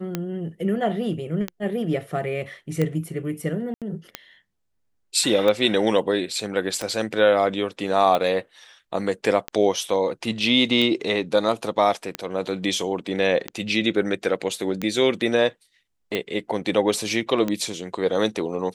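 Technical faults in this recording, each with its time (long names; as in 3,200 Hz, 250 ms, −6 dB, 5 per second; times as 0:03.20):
scratch tick 45 rpm −11 dBFS
0:03.74–0:03.82: drop-out 77 ms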